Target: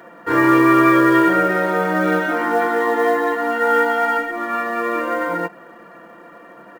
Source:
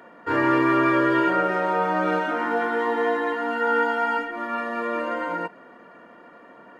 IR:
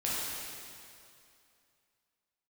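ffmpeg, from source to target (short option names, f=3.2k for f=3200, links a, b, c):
-af "aecho=1:1:5.9:0.54,acrusher=bits=7:mode=log:mix=0:aa=0.000001,volume=4.5dB"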